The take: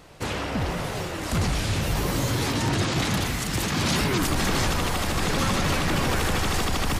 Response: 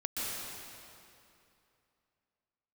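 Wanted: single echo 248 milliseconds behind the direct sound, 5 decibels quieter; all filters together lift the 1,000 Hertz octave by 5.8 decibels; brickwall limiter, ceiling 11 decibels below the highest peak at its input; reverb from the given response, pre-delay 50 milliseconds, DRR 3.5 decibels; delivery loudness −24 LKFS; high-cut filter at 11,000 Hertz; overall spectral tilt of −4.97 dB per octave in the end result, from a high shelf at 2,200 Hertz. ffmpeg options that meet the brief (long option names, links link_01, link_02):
-filter_complex "[0:a]lowpass=11000,equalizer=frequency=1000:width_type=o:gain=8,highshelf=frequency=2200:gain=-4,alimiter=limit=-23dB:level=0:latency=1,aecho=1:1:248:0.562,asplit=2[link_01][link_02];[1:a]atrim=start_sample=2205,adelay=50[link_03];[link_02][link_03]afir=irnorm=-1:irlink=0,volume=-8.5dB[link_04];[link_01][link_04]amix=inputs=2:normalize=0,volume=4dB"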